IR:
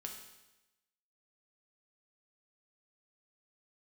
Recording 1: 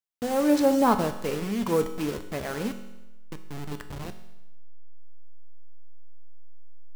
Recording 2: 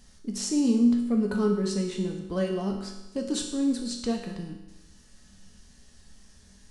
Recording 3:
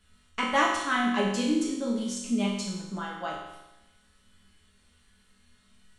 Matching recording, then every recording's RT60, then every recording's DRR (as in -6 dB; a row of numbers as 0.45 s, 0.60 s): 2; 1.0 s, 1.0 s, 1.0 s; 7.0 dB, 0.5 dB, -5.0 dB